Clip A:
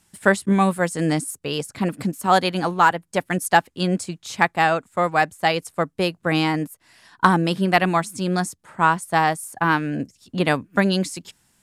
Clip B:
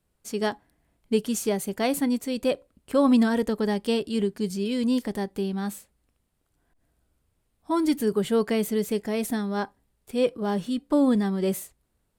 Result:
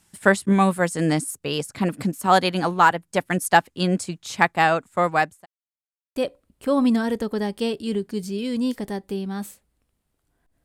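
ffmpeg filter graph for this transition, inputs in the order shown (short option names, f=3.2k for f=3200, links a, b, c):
-filter_complex "[0:a]apad=whole_dur=10.64,atrim=end=10.64,asplit=2[a][b];[a]atrim=end=5.46,asetpts=PTS-STARTPTS,afade=t=out:st=5.04:d=0.42:c=qsin[c];[b]atrim=start=5.46:end=6.16,asetpts=PTS-STARTPTS,volume=0[d];[1:a]atrim=start=2.43:end=6.91,asetpts=PTS-STARTPTS,afade=t=in:d=0.004:c=hsin[e];[c][d][e]concat=n=3:v=0:a=1"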